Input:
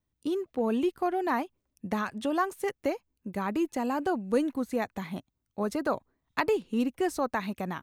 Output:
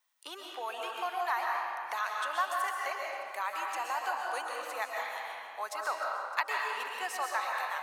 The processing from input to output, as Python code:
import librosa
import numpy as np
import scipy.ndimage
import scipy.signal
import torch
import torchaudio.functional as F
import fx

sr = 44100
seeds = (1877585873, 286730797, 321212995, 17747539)

y = scipy.signal.sosfilt(scipy.signal.butter(4, 840.0, 'highpass', fs=sr, output='sos'), x)
y = fx.echo_feedback(y, sr, ms=305, feedback_pct=51, wet_db=-18.0)
y = fx.rev_freeverb(y, sr, rt60_s=1.8, hf_ratio=0.65, predelay_ms=90, drr_db=-1.0)
y = fx.band_squash(y, sr, depth_pct=40)